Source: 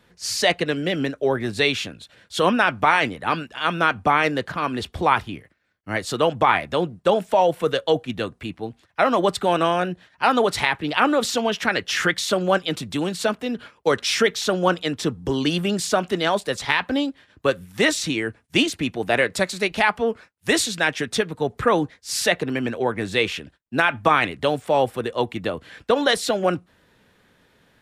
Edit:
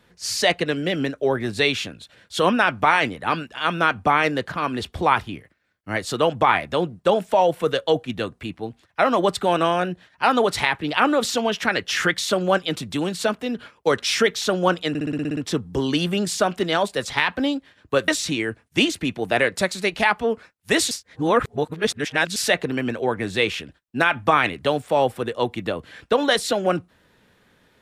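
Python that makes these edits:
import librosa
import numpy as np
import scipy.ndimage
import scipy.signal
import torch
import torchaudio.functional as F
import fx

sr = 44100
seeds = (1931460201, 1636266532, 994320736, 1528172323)

y = fx.edit(x, sr, fx.stutter(start_s=14.89, slice_s=0.06, count=9),
    fx.cut(start_s=17.6, length_s=0.26),
    fx.reverse_span(start_s=20.69, length_s=1.45), tone=tone)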